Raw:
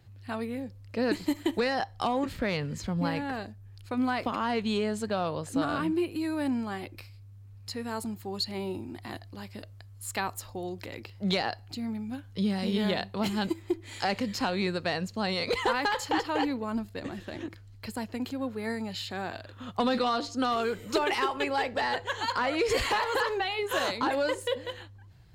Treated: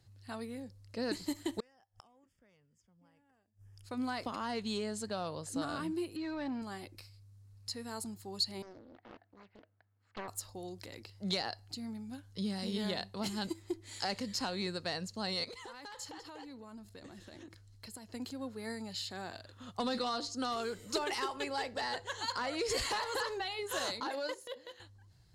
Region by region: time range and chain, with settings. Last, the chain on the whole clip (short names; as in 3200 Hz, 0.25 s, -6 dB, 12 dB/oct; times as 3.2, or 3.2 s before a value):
1.6–3.84 Butterworth band-stop 4100 Hz, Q 3 + flipped gate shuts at -31 dBFS, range -30 dB
6.16–6.62 overdrive pedal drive 14 dB, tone 3700 Hz, clips at -20.5 dBFS + air absorption 190 m
8.62–10.28 speaker cabinet 290–2000 Hz, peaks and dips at 380 Hz -8 dB, 570 Hz -9 dB, 1100 Hz -9 dB, 1900 Hz -4 dB + Doppler distortion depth 0.95 ms
15.44–18.09 notch 4700 Hz, Q 23 + compressor 4:1, threshold -39 dBFS
24–24.8 HPF 270 Hz + bell 8300 Hz -14 dB 0.21 oct + transient shaper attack -12 dB, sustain -6 dB
whole clip: band shelf 6800 Hz +8.5 dB; notch 2400 Hz, Q 20; gain -8.5 dB